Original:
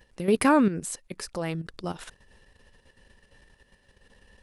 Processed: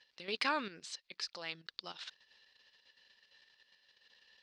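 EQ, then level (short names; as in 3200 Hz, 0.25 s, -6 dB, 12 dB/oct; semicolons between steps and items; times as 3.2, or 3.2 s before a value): band-pass 4400 Hz, Q 2.6; air absorption 160 m; +10.0 dB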